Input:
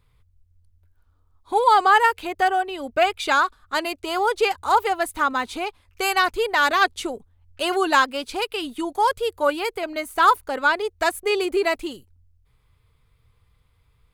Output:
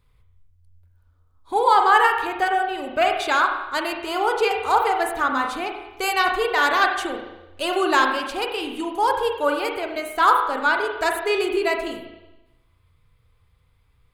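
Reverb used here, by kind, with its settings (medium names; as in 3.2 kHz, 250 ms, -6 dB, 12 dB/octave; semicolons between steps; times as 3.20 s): spring tank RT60 1 s, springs 34/38 ms, chirp 60 ms, DRR 2.5 dB; trim -1.5 dB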